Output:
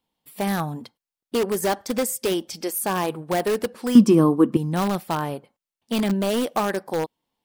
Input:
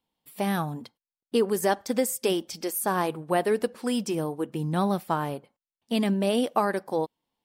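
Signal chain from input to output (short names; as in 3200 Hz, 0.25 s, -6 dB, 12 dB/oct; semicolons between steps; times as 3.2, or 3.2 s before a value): in parallel at -8 dB: wrapped overs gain 18.5 dB; 3.95–4.57 on the sum: small resonant body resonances 240/1100 Hz, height 16 dB, ringing for 20 ms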